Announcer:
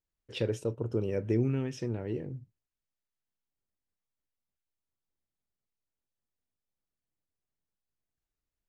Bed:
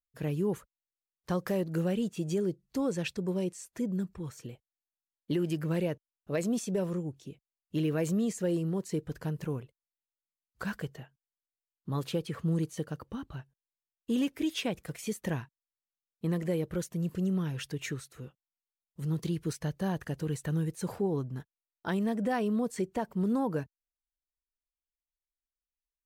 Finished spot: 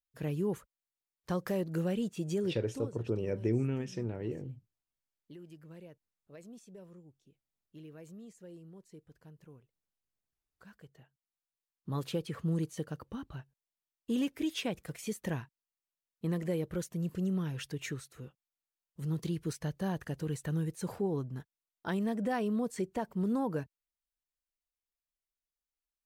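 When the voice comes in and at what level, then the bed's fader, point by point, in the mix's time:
2.15 s, -2.5 dB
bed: 2.63 s -2.5 dB
2.97 s -20.5 dB
10.76 s -20.5 dB
11.37 s -2.5 dB

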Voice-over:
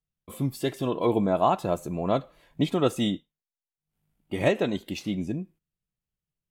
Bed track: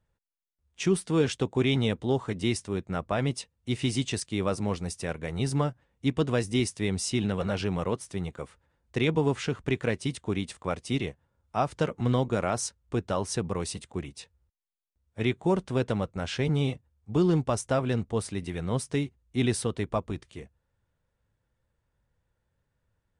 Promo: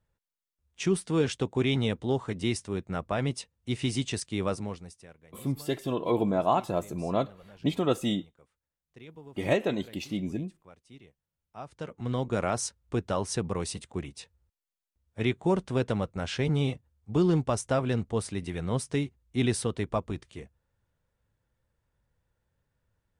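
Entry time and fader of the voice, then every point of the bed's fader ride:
5.05 s, -2.5 dB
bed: 4.51 s -1.5 dB
5.22 s -23 dB
11.21 s -23 dB
12.39 s -0.5 dB

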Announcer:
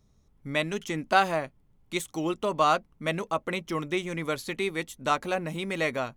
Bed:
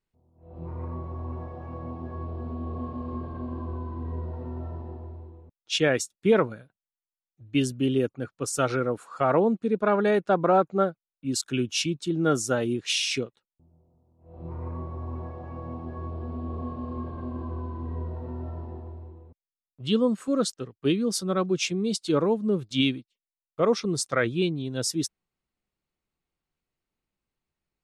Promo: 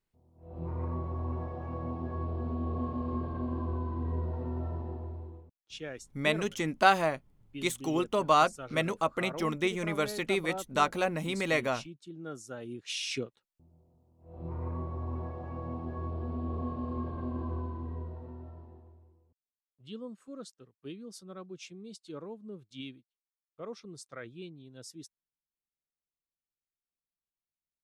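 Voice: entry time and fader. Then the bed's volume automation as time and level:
5.70 s, -0.5 dB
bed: 5.36 s 0 dB
5.74 s -18.5 dB
12.45 s -18.5 dB
13.45 s -1.5 dB
17.55 s -1.5 dB
19.24 s -19.5 dB

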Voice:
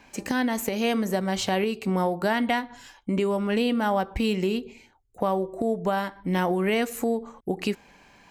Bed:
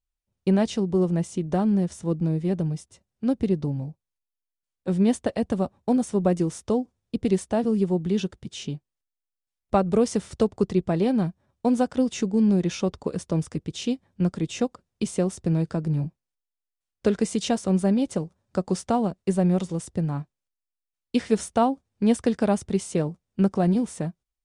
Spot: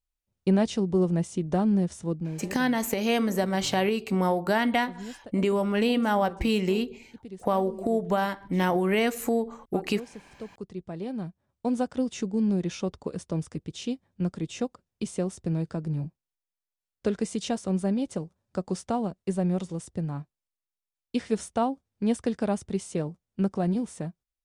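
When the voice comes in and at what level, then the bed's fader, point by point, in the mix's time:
2.25 s, 0.0 dB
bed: 2 s -1.5 dB
2.73 s -19.5 dB
10.3 s -19.5 dB
11.74 s -5 dB

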